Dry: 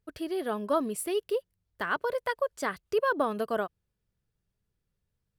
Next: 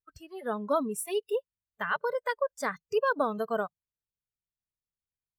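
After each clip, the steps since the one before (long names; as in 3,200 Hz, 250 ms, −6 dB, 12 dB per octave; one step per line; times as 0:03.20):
noise reduction from a noise print of the clip's start 22 dB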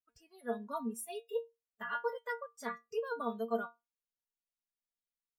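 stiff-string resonator 230 Hz, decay 0.21 s, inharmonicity 0.002
level +3.5 dB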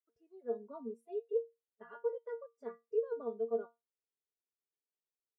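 resonant band-pass 400 Hz, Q 4.5
level +6.5 dB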